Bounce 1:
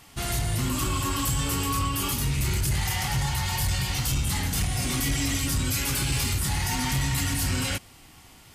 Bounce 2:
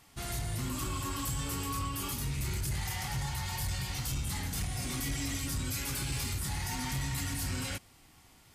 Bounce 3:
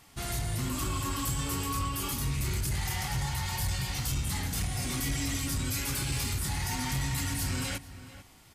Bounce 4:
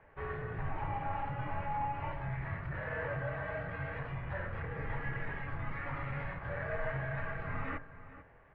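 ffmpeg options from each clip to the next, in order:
-af "equalizer=f=2.9k:t=o:w=0.27:g=-3,volume=-8.5dB"
-filter_complex "[0:a]asplit=2[a][b];[b]adelay=443.1,volume=-14dB,highshelf=f=4k:g=-9.97[c];[a][c]amix=inputs=2:normalize=0,volume=3dB"
-af "bandreject=f=55.23:t=h:w=4,bandreject=f=110.46:t=h:w=4,bandreject=f=165.69:t=h:w=4,bandreject=f=220.92:t=h:w=4,bandreject=f=276.15:t=h:w=4,bandreject=f=331.38:t=h:w=4,bandreject=f=386.61:t=h:w=4,bandreject=f=441.84:t=h:w=4,bandreject=f=497.07:t=h:w=4,bandreject=f=552.3:t=h:w=4,bandreject=f=607.53:t=h:w=4,bandreject=f=662.76:t=h:w=4,bandreject=f=717.99:t=h:w=4,bandreject=f=773.22:t=h:w=4,bandreject=f=828.45:t=h:w=4,bandreject=f=883.68:t=h:w=4,bandreject=f=938.91:t=h:w=4,bandreject=f=994.14:t=h:w=4,bandreject=f=1.04937k:t=h:w=4,bandreject=f=1.1046k:t=h:w=4,bandreject=f=1.15983k:t=h:w=4,bandreject=f=1.21506k:t=h:w=4,bandreject=f=1.27029k:t=h:w=4,bandreject=f=1.32552k:t=h:w=4,bandreject=f=1.38075k:t=h:w=4,bandreject=f=1.43598k:t=h:w=4,bandreject=f=1.49121k:t=h:w=4,bandreject=f=1.54644k:t=h:w=4,bandreject=f=1.60167k:t=h:w=4,bandreject=f=1.6569k:t=h:w=4,bandreject=f=1.71213k:t=h:w=4,bandreject=f=1.76736k:t=h:w=4,bandreject=f=1.82259k:t=h:w=4,bandreject=f=1.87782k:t=h:w=4,bandreject=f=1.93305k:t=h:w=4,bandreject=f=1.98828k:t=h:w=4,bandreject=f=2.04351k:t=h:w=4,bandreject=f=2.09874k:t=h:w=4,highpass=f=160:t=q:w=0.5412,highpass=f=160:t=q:w=1.307,lowpass=f=2.2k:t=q:w=0.5176,lowpass=f=2.2k:t=q:w=0.7071,lowpass=f=2.2k:t=q:w=1.932,afreqshift=-270,volume=1.5dB"

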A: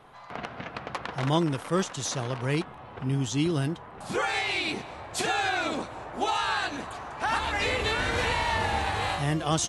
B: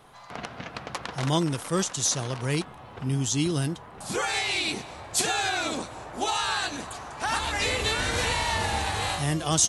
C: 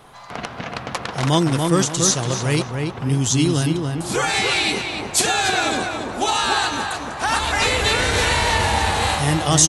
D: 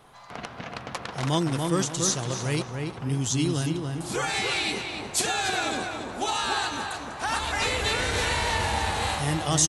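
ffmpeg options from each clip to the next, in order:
-af "bass=f=250:g=2,treble=f=4k:g=11,volume=-1dB"
-filter_complex "[0:a]asplit=2[a][b];[b]adelay=286,lowpass=f=2.5k:p=1,volume=-4dB,asplit=2[c][d];[d]adelay=286,lowpass=f=2.5k:p=1,volume=0.34,asplit=2[e][f];[f]adelay=286,lowpass=f=2.5k:p=1,volume=0.34,asplit=2[g][h];[h]adelay=286,lowpass=f=2.5k:p=1,volume=0.34[i];[a][c][e][g][i]amix=inputs=5:normalize=0,volume=7dB"
-af "aecho=1:1:359:0.106,volume=-7.5dB"

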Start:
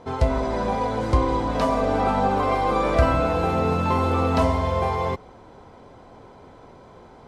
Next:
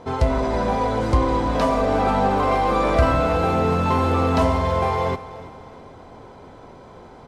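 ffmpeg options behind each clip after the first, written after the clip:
-filter_complex "[0:a]asplit=2[a][b];[b]volume=25dB,asoftclip=hard,volume=-25dB,volume=-6dB[c];[a][c]amix=inputs=2:normalize=0,aecho=1:1:329|658|987|1316:0.15|0.0628|0.0264|0.0111"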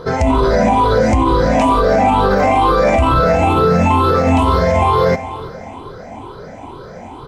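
-af "afftfilt=real='re*pow(10,15/40*sin(2*PI*(0.61*log(max(b,1)*sr/1024/100)/log(2)-(2.2)*(pts-256)/sr)))':imag='im*pow(10,15/40*sin(2*PI*(0.61*log(max(b,1)*sr/1024/100)/log(2)-(2.2)*(pts-256)/sr)))':win_size=1024:overlap=0.75,alimiter=limit=-13dB:level=0:latency=1:release=48,volume=8dB"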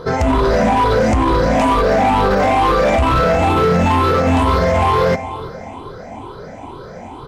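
-af "asoftclip=type=hard:threshold=-10dB"

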